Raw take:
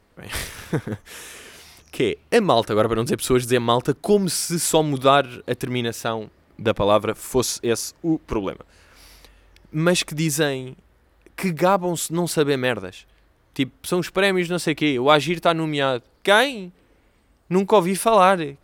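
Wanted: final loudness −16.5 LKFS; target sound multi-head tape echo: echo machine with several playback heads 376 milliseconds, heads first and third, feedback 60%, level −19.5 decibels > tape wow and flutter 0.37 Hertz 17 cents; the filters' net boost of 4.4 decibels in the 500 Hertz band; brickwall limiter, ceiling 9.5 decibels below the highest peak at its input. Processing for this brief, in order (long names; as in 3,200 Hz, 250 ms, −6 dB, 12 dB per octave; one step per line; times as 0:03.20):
parametric band 500 Hz +5.5 dB
brickwall limiter −9 dBFS
echo machine with several playback heads 376 ms, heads first and third, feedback 60%, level −19.5 dB
tape wow and flutter 0.37 Hz 17 cents
level +5 dB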